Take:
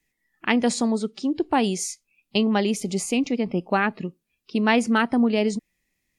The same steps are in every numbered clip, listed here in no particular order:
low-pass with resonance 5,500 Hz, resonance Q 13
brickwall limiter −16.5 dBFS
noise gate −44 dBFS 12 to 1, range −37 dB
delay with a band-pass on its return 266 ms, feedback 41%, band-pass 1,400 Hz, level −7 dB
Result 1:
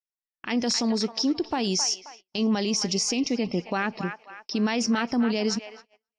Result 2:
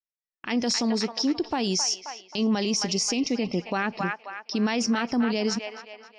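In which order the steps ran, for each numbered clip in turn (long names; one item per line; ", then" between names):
low-pass with resonance, then brickwall limiter, then delay with a band-pass on its return, then noise gate
low-pass with resonance, then noise gate, then delay with a band-pass on its return, then brickwall limiter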